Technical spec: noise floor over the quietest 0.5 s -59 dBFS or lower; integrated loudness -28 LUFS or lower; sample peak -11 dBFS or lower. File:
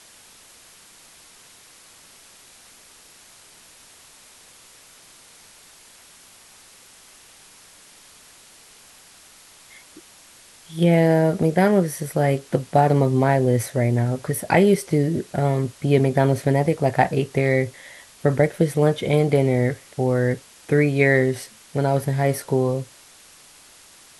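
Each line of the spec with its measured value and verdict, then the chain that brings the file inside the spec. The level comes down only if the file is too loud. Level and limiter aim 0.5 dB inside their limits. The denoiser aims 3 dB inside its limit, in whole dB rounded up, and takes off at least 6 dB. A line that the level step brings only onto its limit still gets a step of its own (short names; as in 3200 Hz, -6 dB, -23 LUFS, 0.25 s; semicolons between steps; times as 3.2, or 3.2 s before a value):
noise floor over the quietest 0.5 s -49 dBFS: fail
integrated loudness -20.5 LUFS: fail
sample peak -2.5 dBFS: fail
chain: denoiser 6 dB, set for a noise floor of -49 dBFS; gain -8 dB; limiter -11.5 dBFS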